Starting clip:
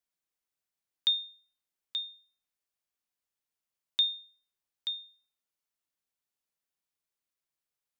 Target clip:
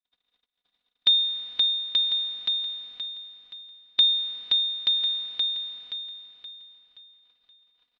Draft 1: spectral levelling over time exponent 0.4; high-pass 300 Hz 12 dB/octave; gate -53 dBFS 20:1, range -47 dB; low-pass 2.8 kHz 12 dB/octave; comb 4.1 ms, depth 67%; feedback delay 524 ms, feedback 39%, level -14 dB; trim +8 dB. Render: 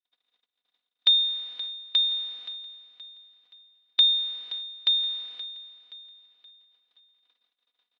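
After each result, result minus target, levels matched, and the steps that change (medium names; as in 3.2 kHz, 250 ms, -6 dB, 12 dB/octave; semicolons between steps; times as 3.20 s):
echo-to-direct -11 dB; 250 Hz band -6.5 dB
change: feedback delay 524 ms, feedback 39%, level -3 dB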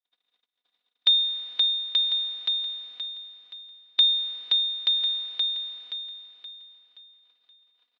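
250 Hz band -5.0 dB
remove: high-pass 300 Hz 12 dB/octave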